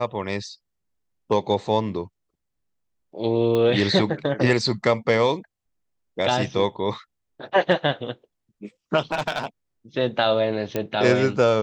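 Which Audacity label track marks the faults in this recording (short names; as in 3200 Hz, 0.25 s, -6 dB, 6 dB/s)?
3.550000	3.550000	pop -13 dBFS
9.120000	9.460000	clipped -17.5 dBFS
10.760000	10.760000	pop -11 dBFS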